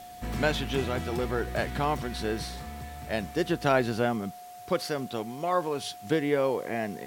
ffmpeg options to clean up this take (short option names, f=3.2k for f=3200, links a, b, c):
-af "bandreject=f=720:w=30,afwtdn=0.002"